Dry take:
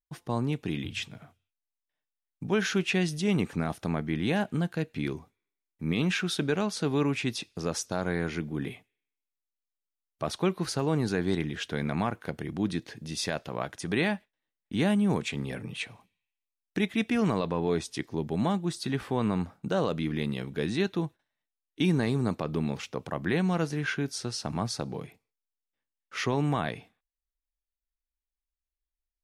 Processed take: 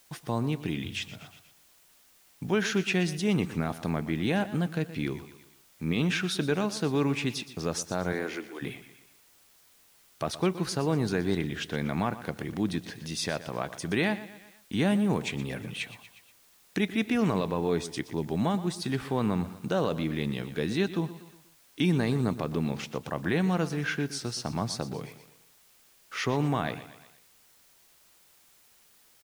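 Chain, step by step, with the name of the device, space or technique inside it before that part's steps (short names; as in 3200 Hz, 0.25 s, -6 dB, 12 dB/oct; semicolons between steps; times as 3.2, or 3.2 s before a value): 8.12–8.61 HPF 200 Hz -> 430 Hz 24 dB/oct; feedback echo 0.12 s, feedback 41%, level -15 dB; noise-reduction cassette on a plain deck (mismatched tape noise reduction encoder only; wow and flutter 29 cents; white noise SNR 30 dB)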